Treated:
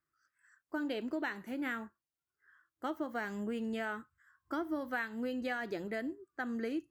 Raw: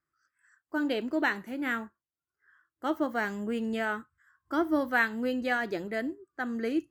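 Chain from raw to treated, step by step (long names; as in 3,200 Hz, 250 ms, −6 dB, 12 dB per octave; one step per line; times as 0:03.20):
downward compressor 4 to 1, threshold −32 dBFS, peak gain reduction 10.5 dB
level −2 dB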